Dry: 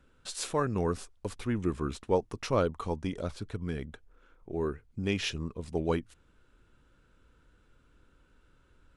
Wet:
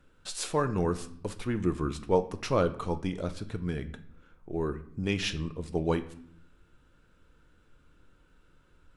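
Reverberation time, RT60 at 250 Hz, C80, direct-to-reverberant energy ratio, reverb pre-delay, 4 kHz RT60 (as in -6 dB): 0.65 s, 1.1 s, 18.0 dB, 9.0 dB, 6 ms, 0.50 s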